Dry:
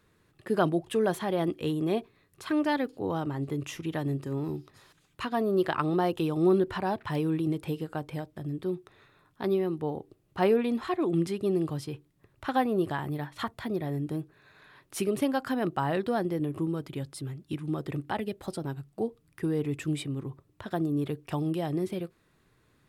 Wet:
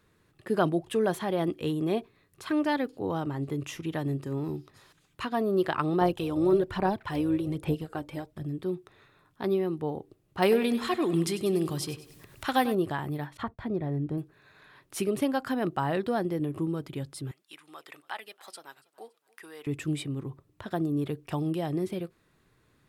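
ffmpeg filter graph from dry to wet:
-filter_complex "[0:a]asettb=1/sr,asplit=3[a][b][c];[a]atrim=end=6.014[d];[b]atrim=start=6.01:end=8.43,asetpts=PTS-STARTPTS,afade=t=in:d=0.004:c=qsin,afade=t=out:st=2.416:d=0.004:c=qsin,aphaser=in_gain=1:out_gain=1:delay=3.5:decay=0.5:speed=1.2:type=sinusoidal,tremolo=f=220:d=0.333[e];[c]atrim=start=8.426[f];[d][e]acrossfade=d=0.004:c1=hsin:c2=qsin[g];[g][f]acrossfade=d=0.004:c1=qsin:c2=hsin,asettb=1/sr,asplit=3[h][i][j];[h]atrim=end=10.424[k];[i]atrim=start=10.42:end=12.75,asetpts=PTS-STARTPTS,afade=t=in:d=0.004:c=qsin,afade=t=out:st=2.326:d=0.004:c=qsin,highshelf=f=2.4k:g=11.5,acompressor=mode=upward:threshold=-40dB:ratio=2.5:attack=3.2:release=140:knee=2.83:detection=peak,aecho=1:1:97|194|291|388:0.2|0.0938|0.0441|0.0207,atrim=end_sample=102753[l];[j]atrim=start=12.746[m];[k][l]acrossfade=d=0.004:c1=hsin:c2=qsin[n];[n][m]acrossfade=d=0.004:c1=qsin:c2=hsin,asettb=1/sr,asplit=3[o][p][q];[o]atrim=end=13.374[r];[p]atrim=start=13.37:end=14.18,asetpts=PTS-STARTPTS,afade=t=in:d=0.004:c=qsin,afade=t=out:st=0.806:d=0.004:c=qsin,lowpass=f=1.4k:p=1,agate=range=-33dB:threshold=-48dB:ratio=3:release=100:detection=peak,lowshelf=f=82:g=8.5[s];[q]atrim=start=14.176[t];[r][s]acrossfade=d=0.004:c1=hsin:c2=qsin[u];[u][t]acrossfade=d=0.004:c1=qsin:c2=hsin,asettb=1/sr,asplit=3[v][w][x];[v]atrim=end=17.314[y];[w]atrim=start=17.31:end=19.67,asetpts=PTS-STARTPTS,afade=t=in:d=0.004:c=qsin,afade=t=out:st=2.356:d=0.004:c=qsin,highpass=1.1k,aecho=1:1:283|566|849:0.0668|0.0294|0.0129,atrim=end_sample=104076[z];[x]atrim=start=19.666[aa];[y][z]acrossfade=d=0.004:c1=hsin:c2=qsin[ab];[ab][aa]acrossfade=d=0.004:c1=qsin:c2=hsin"

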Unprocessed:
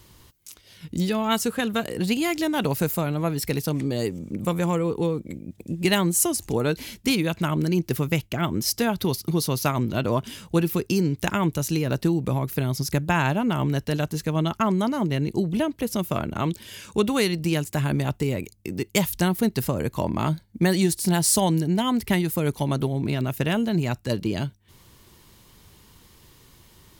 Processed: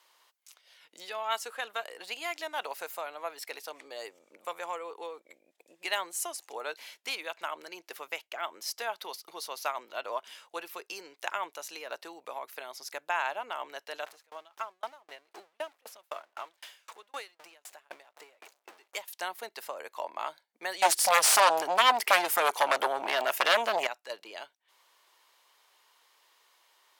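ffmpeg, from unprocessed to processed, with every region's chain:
-filter_complex "[0:a]asettb=1/sr,asplit=3[a][b][c];[a]atrim=end=14.064[d];[b]atrim=start=14.06:end=19.08,asetpts=PTS-STARTPTS,afade=t=in:d=0.004:c=qsin,afade=t=out:st=5.016:d=0.004:c=qsin,aeval=exprs='val(0)+0.5*0.0355*sgn(val(0))':c=same,aeval=exprs='val(0)*pow(10,-36*if(lt(mod(3.9*n/s,1),2*abs(3.9)/1000),1-mod(3.9*n/s,1)/(2*abs(3.9)/1000),(mod(3.9*n/s,1)-2*abs(3.9)/1000)/(1-2*abs(3.9)/1000))/20)':c=same[e];[c]atrim=start=19.076[f];[d][e]acrossfade=d=0.004:c1=hsin:c2=qsin[g];[g][f]acrossfade=d=0.004:c1=qsin:c2=hsin,asettb=1/sr,asplit=3[h][i][j];[h]atrim=end=20.824[k];[i]atrim=start=20.82:end=23.87,asetpts=PTS-STARTPTS,afade=t=in:d=0.004:c=qsin,afade=t=out:st=3.046:d=0.004:c=qsin,equalizer=f=4k:w=6.5:g=-6.5,aeval=exprs='0.473*sin(PI/2*4.47*val(0)/0.473)':c=same[l];[j]atrim=start=23.866[m];[k][l]acrossfade=d=0.004:c1=hsin:c2=qsin[n];[n][m]acrossfade=d=0.004:c1=qsin:c2=hsin,highpass=f=630:w=0.5412,highpass=f=630:w=1.3066,aemphasis=mode=reproduction:type=cd,volume=-5.5dB"

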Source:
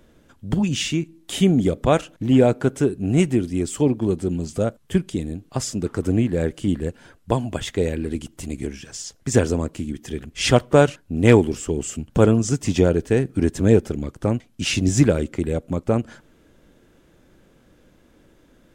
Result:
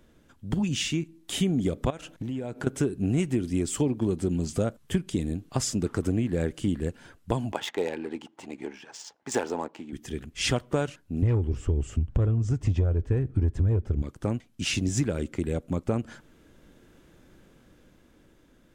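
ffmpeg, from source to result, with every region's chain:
-filter_complex "[0:a]asettb=1/sr,asplit=3[a][b][c];[a]atrim=end=1.904[d];[b]atrim=start=1.9:end=2.67,asetpts=PTS-STARTPTS,afade=t=in:d=0.004:c=qsin,afade=t=out:st=0.766:d=0.004:c=qsin,bandreject=f=1.2k:w=16,acompressor=threshold=-28dB:ratio=12:attack=3.2:release=140:knee=1:detection=peak[e];[c]atrim=start=2.666[f];[d][e]acrossfade=d=0.004:c1=hsin:c2=qsin[g];[g][f]acrossfade=d=0.004:c1=qsin:c2=hsin,asettb=1/sr,asplit=3[h][i][j];[h]atrim=end=7.524[k];[i]atrim=start=7.52:end=9.93,asetpts=PTS-STARTPTS,afade=t=in:d=0.004:c=qsin,afade=t=out:st=2.406:d=0.004:c=qsin,equalizer=f=860:w=3.9:g=13.5,adynamicsmooth=sensitivity=4.5:basefreq=2.7k,highpass=370[l];[j]atrim=start=9.926[m];[k][l]acrossfade=d=0.004:c1=hsin:c2=qsin[n];[n][m]acrossfade=d=0.004:c1=qsin:c2=hsin,asettb=1/sr,asplit=3[o][p][q];[o]atrim=end=11.224[r];[p]atrim=start=11.22:end=14.02,asetpts=PTS-STARTPTS,afade=t=in:d=0.004:c=qsin,afade=t=out:st=2.796:d=0.004:c=qsin,lowpass=f=1.2k:p=1,lowshelf=f=130:t=q:w=1.5:g=11,acontrast=33[s];[q]atrim=start=14.016[t];[r][s]acrossfade=d=0.004:c1=hsin:c2=qsin[u];[u][t]acrossfade=d=0.004:c1=qsin:c2=hsin,dynaudnorm=f=370:g=9:m=11.5dB,equalizer=f=560:w=1.5:g=-2.5,acompressor=threshold=-17dB:ratio=6,volume=-4.5dB"

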